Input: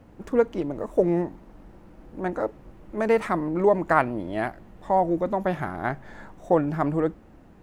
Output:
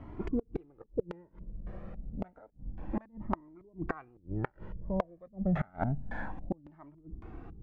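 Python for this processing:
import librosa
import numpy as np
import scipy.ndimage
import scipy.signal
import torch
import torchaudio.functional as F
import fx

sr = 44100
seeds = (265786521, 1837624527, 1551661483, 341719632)

y = fx.filter_lfo_lowpass(x, sr, shape='square', hz=1.8, low_hz=200.0, high_hz=2400.0, q=0.71)
y = fx.gate_flip(y, sr, shuts_db=-22.0, range_db=-32)
y = fx.comb_cascade(y, sr, direction='rising', hz=0.29)
y = y * 10.0 ** (8.5 / 20.0)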